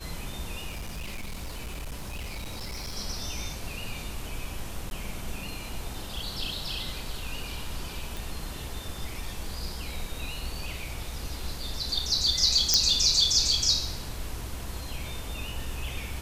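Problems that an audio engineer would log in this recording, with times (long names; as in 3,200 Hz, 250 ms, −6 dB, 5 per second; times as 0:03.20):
0:00.68–0:02.97: clipping −32 dBFS
0:04.90–0:04.91: drop-out 11 ms
0:08.17: click
0:12.74: click −4 dBFS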